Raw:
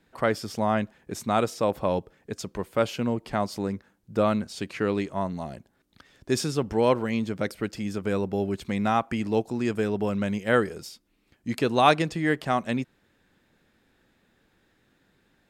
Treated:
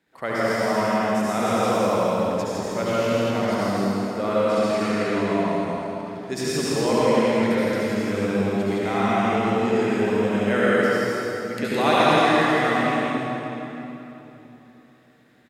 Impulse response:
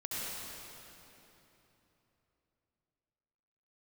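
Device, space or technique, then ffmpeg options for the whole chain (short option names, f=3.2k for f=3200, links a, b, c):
stadium PA: -filter_complex "[0:a]highpass=f=210:p=1,equalizer=f=2k:t=o:w=0.34:g=4,aecho=1:1:163.3|233.2:0.708|0.355[a];[1:a]atrim=start_sample=2205[b];[a][b]afir=irnorm=-1:irlink=0"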